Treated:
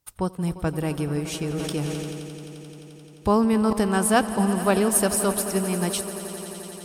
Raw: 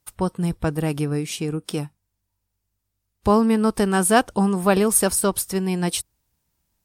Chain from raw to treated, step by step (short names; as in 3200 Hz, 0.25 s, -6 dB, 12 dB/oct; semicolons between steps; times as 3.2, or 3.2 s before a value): swelling echo 87 ms, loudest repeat 5, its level -16.5 dB; 1.39–3.73 sustainer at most 22 dB/s; gain -3 dB